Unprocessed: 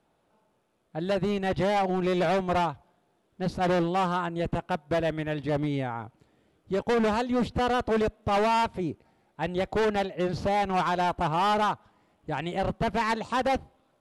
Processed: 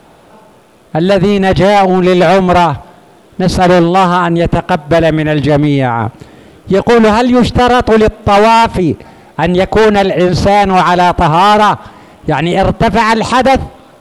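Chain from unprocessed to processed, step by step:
boost into a limiter +31 dB
level −2.5 dB

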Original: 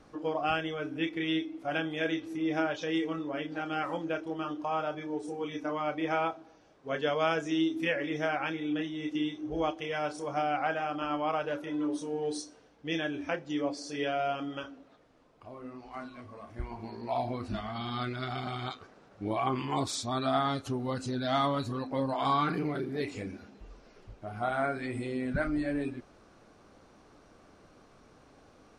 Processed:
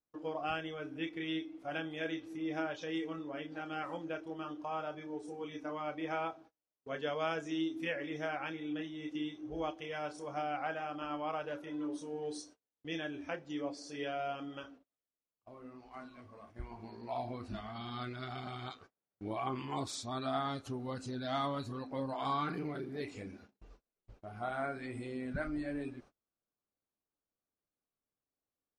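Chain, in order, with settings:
noise gate −49 dBFS, range −33 dB
level −7 dB

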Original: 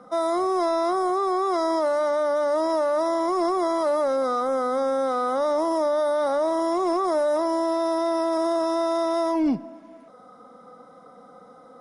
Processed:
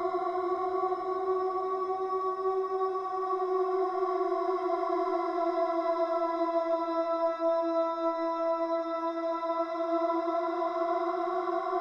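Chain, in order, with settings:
low-pass filter 3,100 Hz 12 dB per octave
extreme stretch with random phases 22×, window 0.25 s, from 0:00.38
level −7 dB

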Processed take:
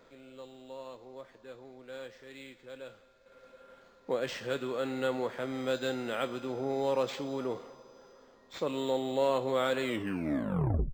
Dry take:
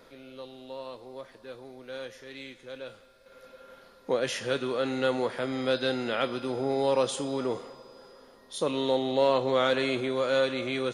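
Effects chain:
turntable brake at the end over 1.12 s
linearly interpolated sample-rate reduction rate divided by 4×
level −4.5 dB

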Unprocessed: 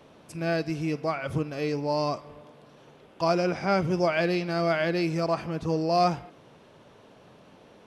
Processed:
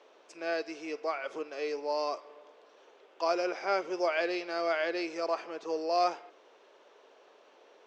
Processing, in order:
elliptic band-pass filter 390–6,800 Hz, stop band 50 dB
level −3.5 dB

